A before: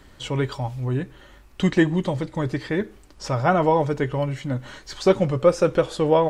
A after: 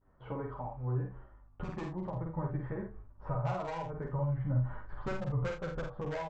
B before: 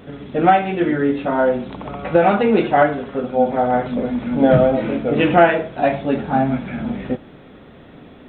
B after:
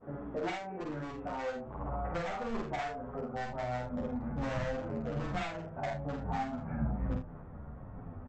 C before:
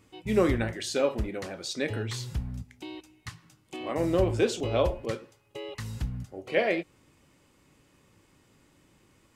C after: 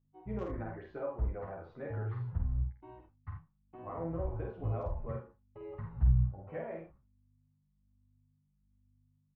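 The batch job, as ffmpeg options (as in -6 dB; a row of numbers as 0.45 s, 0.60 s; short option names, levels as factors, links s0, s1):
-filter_complex "[0:a]agate=range=0.0224:threshold=0.01:ratio=3:detection=peak,lowpass=f=1100:w=0.5412,lowpass=f=1100:w=1.3066,aresample=16000,asoftclip=type=hard:threshold=0.211,aresample=44100,tiltshelf=f=850:g=-7.5,acompressor=threshold=0.0224:ratio=6,asubboost=boost=9:cutoff=110,aeval=exprs='val(0)+0.000398*(sin(2*PI*50*n/s)+sin(2*PI*2*50*n/s)/2+sin(2*PI*3*50*n/s)/3+sin(2*PI*4*50*n/s)/4+sin(2*PI*5*50*n/s)/5)':c=same,aecho=1:1:48|79:0.668|0.316,asplit=2[s0][s1];[s1]adelay=10,afreqshift=-1.2[s2];[s0][s2]amix=inputs=2:normalize=1"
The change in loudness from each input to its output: -14.5 LU, -20.0 LU, -7.5 LU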